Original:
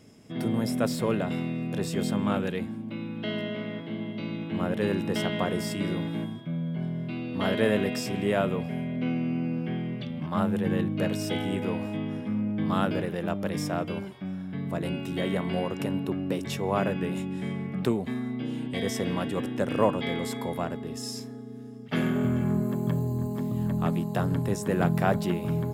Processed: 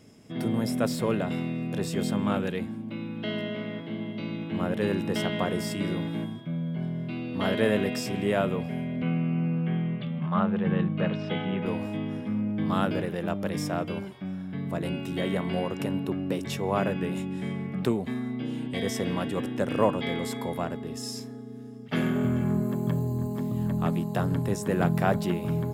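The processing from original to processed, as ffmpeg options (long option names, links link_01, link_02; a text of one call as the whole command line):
ffmpeg -i in.wav -filter_complex "[0:a]asettb=1/sr,asplit=3[link_01][link_02][link_03];[link_01]atrim=end=9.024[link_04];[link_02]atrim=start=9.02:end=11.66,asetpts=PTS-STARTPTS,afade=type=in:duration=0.004:curve=qsin,afade=type=out:start_time=2.636:duration=0.004:curve=qsin,highpass=140,equalizer=frequency=170:width_type=q:width=4:gain=9,equalizer=frequency=290:width_type=q:width=4:gain=-9,equalizer=frequency=1200:width_type=q:width=4:gain=5,lowpass=frequency=3500:width=0.5412,lowpass=frequency=3500:width=1.3066[link_05];[link_03]atrim=start=11.656[link_06];[link_04][link_05]acrossfade=duration=0.004:curve1=hsin:curve2=qsin[link_07];[link_07][link_06]acrossfade=duration=0.004:curve1=qsin:curve2=hsin" out.wav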